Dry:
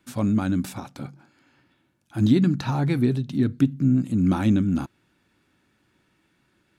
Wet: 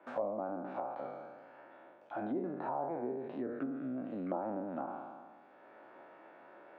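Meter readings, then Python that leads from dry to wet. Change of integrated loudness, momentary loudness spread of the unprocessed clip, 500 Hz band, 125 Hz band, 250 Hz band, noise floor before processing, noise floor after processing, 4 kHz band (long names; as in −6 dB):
−17.0 dB, 16 LU, −4.5 dB, −29.5 dB, −19.0 dB, −68 dBFS, −60 dBFS, below −25 dB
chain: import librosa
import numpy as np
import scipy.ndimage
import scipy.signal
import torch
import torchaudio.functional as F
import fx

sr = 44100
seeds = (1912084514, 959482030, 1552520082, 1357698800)

y = fx.spec_trails(x, sr, decay_s=1.01)
y = fx.ladder_bandpass(y, sr, hz=700.0, resonance_pct=55)
y = fx.env_lowpass_down(y, sr, base_hz=870.0, full_db=-38.5)
y = fx.band_squash(y, sr, depth_pct=70)
y = F.gain(torch.from_numpy(y), 4.5).numpy()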